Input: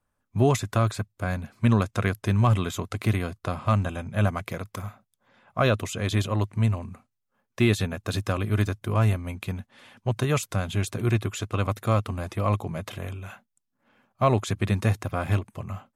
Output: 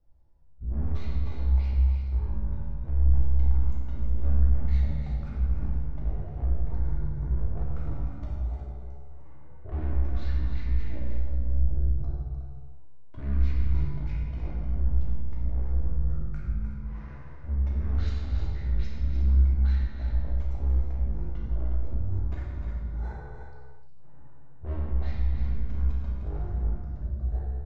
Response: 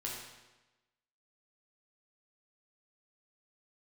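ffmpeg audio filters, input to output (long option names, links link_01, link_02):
-filter_complex "[0:a]lowshelf=frequency=390:gain=8,asoftclip=type=tanh:threshold=-23dB,areverse,acompressor=threshold=-37dB:ratio=12,areverse,aemphasis=mode=reproduction:type=bsi,aecho=1:1:174.9|209.9:0.398|0.282[link_01];[1:a]atrim=start_sample=2205,afade=type=out:start_time=0.27:duration=0.01,atrim=end_sample=12348[link_02];[link_01][link_02]afir=irnorm=-1:irlink=0,asetrate=25442,aresample=44100"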